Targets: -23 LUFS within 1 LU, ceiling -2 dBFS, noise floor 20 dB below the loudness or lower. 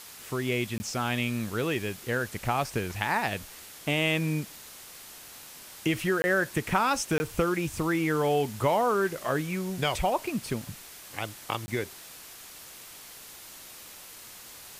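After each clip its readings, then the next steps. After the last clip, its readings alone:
dropouts 4; longest dropout 20 ms; noise floor -47 dBFS; noise floor target -49 dBFS; loudness -29.0 LUFS; peak -9.5 dBFS; loudness target -23.0 LUFS
-> interpolate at 0.78/6.22/7.18/11.66, 20 ms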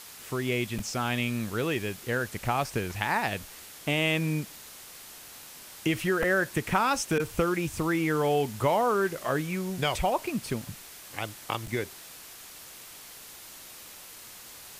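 dropouts 0; noise floor -47 dBFS; noise floor target -49 dBFS
-> denoiser 6 dB, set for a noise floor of -47 dBFS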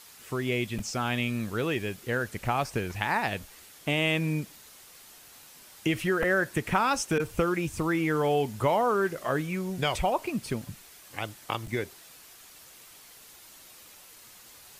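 noise floor -52 dBFS; loudness -29.0 LUFS; peak -9.5 dBFS; loudness target -23.0 LUFS
-> gain +6 dB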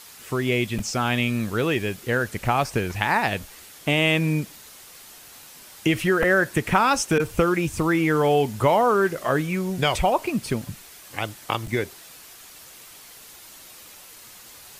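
loudness -23.0 LUFS; peak -3.5 dBFS; noise floor -46 dBFS

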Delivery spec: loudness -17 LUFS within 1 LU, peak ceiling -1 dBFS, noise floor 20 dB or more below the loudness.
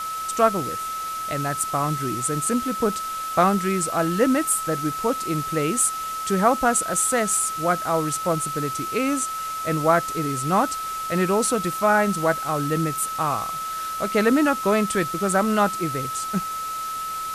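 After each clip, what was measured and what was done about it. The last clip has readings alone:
steady tone 1300 Hz; tone level -27 dBFS; noise floor -30 dBFS; noise floor target -43 dBFS; loudness -22.5 LUFS; peak -5.0 dBFS; loudness target -17.0 LUFS
-> notch 1300 Hz, Q 30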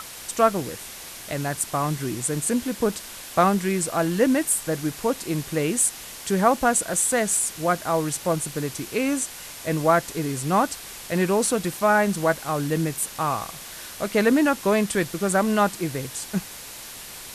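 steady tone none; noise floor -39 dBFS; noise floor target -44 dBFS
-> denoiser 6 dB, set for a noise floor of -39 dBFS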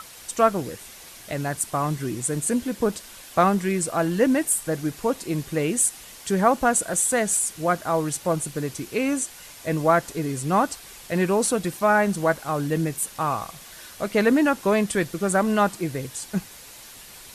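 noise floor -44 dBFS; loudness -23.5 LUFS; peak -6.0 dBFS; loudness target -17.0 LUFS
-> gain +6.5 dB; limiter -1 dBFS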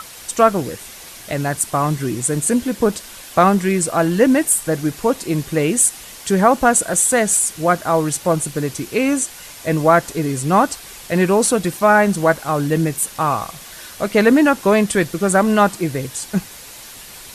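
loudness -17.0 LUFS; peak -1.0 dBFS; noise floor -38 dBFS

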